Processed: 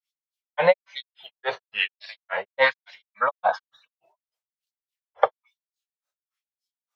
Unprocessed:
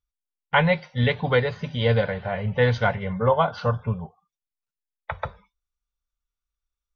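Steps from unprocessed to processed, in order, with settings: granulator 170 ms, grains 3.5 per s, spray 10 ms, pitch spread up and down by 3 st; LFO high-pass sine 1.1 Hz 570–5000 Hz; trim +7.5 dB

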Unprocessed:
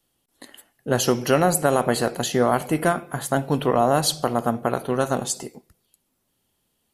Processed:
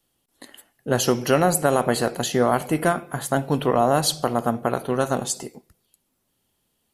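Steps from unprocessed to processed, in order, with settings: hard clipper -5 dBFS, distortion -53 dB

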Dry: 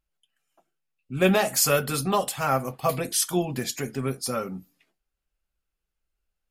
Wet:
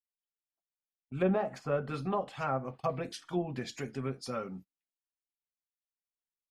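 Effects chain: gate -39 dBFS, range -30 dB; low-pass that closes with the level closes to 1.1 kHz, closed at -19.5 dBFS; trim -7.5 dB

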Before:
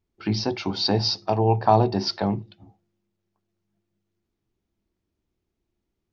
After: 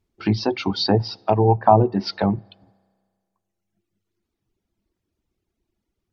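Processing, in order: spring tank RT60 1.9 s, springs 31 ms, chirp 45 ms, DRR 19 dB; low-pass that closes with the level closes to 1.3 kHz, closed at -16.5 dBFS; reverb removal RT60 1.5 s; trim +5 dB

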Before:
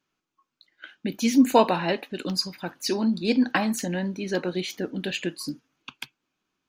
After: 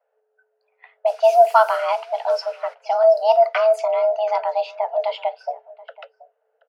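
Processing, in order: RIAA curve playback; 1.06–2.73 s: added noise white -47 dBFS; in parallel at -0.5 dB: compression, threshold -29 dBFS, peak gain reduction 21 dB; on the sum: rippled EQ curve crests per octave 0.9, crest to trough 6 dB; on a send: delay 729 ms -21 dB; on the sum: level-controlled noise filter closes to 1.2 kHz, open at -10 dBFS; frequency shift +430 Hz; trim -2 dB

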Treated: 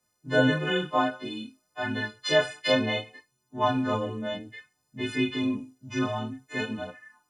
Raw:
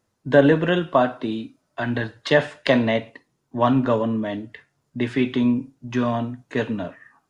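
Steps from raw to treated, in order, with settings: partials quantised in pitch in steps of 3 st; chorus voices 2, 0.58 Hz, delay 27 ms, depth 3.4 ms; trim -4 dB

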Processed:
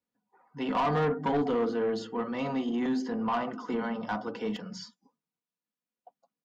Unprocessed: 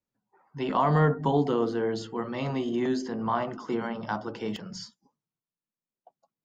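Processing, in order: high-pass 140 Hz 6 dB/octave; treble shelf 6.3 kHz -10 dB; comb 4.1 ms, depth 51%; saturation -22 dBFS, distortion -12 dB

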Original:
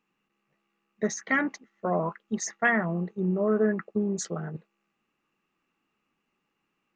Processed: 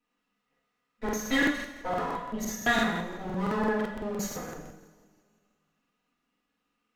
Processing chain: comb filter that takes the minimum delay 4.1 ms; two-slope reverb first 0.82 s, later 2.2 s, from -17 dB, DRR -8 dB; crackling interface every 0.17 s, samples 2048, repeat, from 0.70 s; trim -8.5 dB

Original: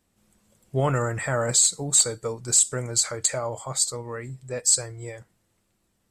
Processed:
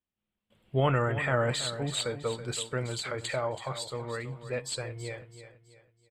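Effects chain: resonant high shelf 4.4 kHz -12.5 dB, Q 3; gate with hold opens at -53 dBFS; feedback delay 328 ms, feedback 37%, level -12 dB; trim -2.5 dB

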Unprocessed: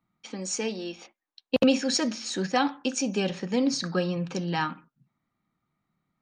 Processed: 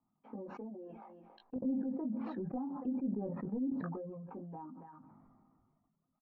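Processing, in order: peaking EQ 250 Hz +9 dB 0.3 oct; delay 279 ms -21.5 dB; compression 4:1, threshold -37 dBFS, peak gain reduction 21.5 dB; four-pole ladder low-pass 1.1 kHz, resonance 45%; saturation -33 dBFS, distortion -25 dB; doubling 19 ms -3.5 dB; reverb removal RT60 1.6 s; low-pass that closes with the level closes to 570 Hz, closed at -43 dBFS; 1.56–3.72 s: bass shelf 350 Hz +9.5 dB; decay stretcher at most 26 dB/s; trim +1 dB

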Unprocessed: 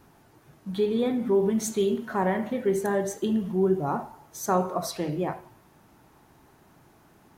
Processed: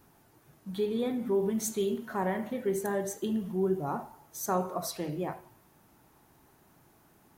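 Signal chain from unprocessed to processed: treble shelf 9.5 kHz +10.5 dB; trim -5.5 dB

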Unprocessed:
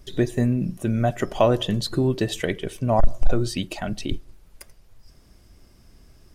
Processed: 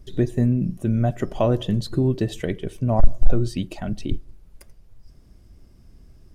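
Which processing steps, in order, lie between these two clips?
bass shelf 460 Hz +10.5 dB; trim -7 dB

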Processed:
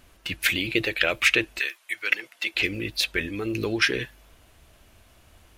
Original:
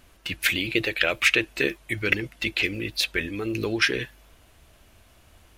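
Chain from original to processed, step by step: 1.58–2.54 s: high-pass 1.4 kHz -> 550 Hz 12 dB/octave

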